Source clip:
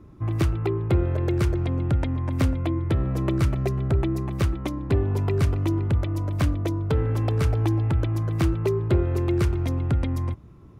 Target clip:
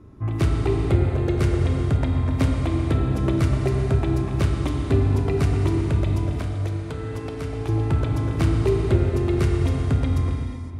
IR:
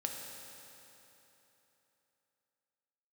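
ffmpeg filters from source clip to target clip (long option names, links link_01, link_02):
-filter_complex "[0:a]asettb=1/sr,asplit=3[link_01][link_02][link_03];[link_01]atrim=end=6.374[link_04];[link_02]atrim=start=6.37:end=7.69,asetpts=PTS-STARTPTS,afade=type=in:duration=0.004:curve=qsin,afade=type=out:start_time=1.316:duration=0.004:curve=qsin,acrossover=split=380|1200|2700[link_05][link_06][link_07][link_08];[link_05]acompressor=threshold=-33dB:ratio=4[link_09];[link_06]acompressor=threshold=-42dB:ratio=4[link_10];[link_07]acompressor=threshold=-46dB:ratio=4[link_11];[link_08]acompressor=threshold=-49dB:ratio=4[link_12];[link_09][link_10][link_11][link_12]amix=inputs=4:normalize=0[link_13];[link_03]atrim=start=7.686[link_14];[link_04][link_13]acrossfade=duration=0.004:curve1=hsin:curve2=qsin[link_15];[link_15][link_14]acrossfade=duration=0.004:curve1=qsin:curve2=hsin[link_16];[1:a]atrim=start_sample=2205,afade=type=out:start_time=0.31:duration=0.01,atrim=end_sample=14112,asetrate=22050,aresample=44100[link_17];[link_16][link_17]afir=irnorm=-1:irlink=0,volume=-2dB"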